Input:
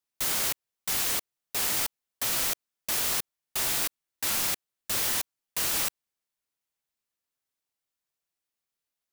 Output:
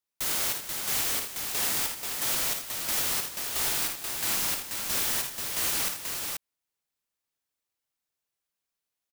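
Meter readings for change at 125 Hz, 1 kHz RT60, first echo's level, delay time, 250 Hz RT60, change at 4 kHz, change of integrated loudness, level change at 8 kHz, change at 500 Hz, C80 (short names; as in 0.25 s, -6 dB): +0.5 dB, none, -6.5 dB, 54 ms, none, +0.5 dB, +0.5 dB, +0.5 dB, +0.5 dB, none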